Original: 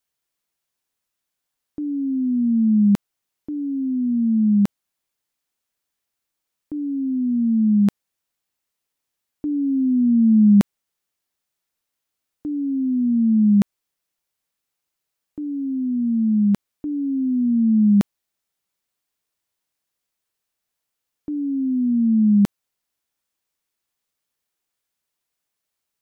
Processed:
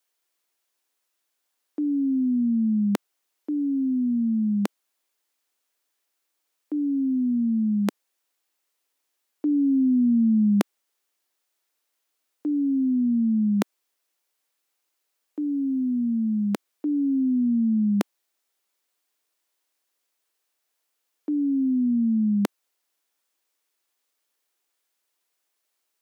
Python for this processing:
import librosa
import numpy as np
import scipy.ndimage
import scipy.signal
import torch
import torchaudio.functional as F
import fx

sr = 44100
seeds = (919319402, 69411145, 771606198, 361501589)

y = scipy.signal.sosfilt(scipy.signal.butter(4, 280.0, 'highpass', fs=sr, output='sos'), x)
y = y * 10.0 ** (3.5 / 20.0)